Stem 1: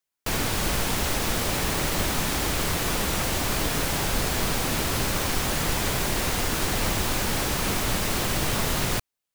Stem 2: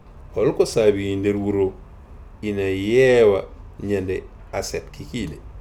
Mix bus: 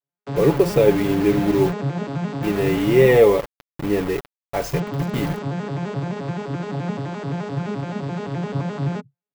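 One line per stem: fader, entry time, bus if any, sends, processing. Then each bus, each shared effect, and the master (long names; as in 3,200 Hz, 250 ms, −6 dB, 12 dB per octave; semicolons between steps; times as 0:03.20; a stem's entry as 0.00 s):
+1.5 dB, 0.00 s, muted 0:03.18–0:04.73, no send, vocoder with an arpeggio as carrier major triad, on C#3, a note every 86 ms
+1.5 dB, 0.00 s, no send, comb filter 5.9 ms, depth 47%; bit reduction 5 bits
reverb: not used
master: parametric band 7,400 Hz −10.5 dB 2.4 octaves; comb filter 7 ms, depth 44%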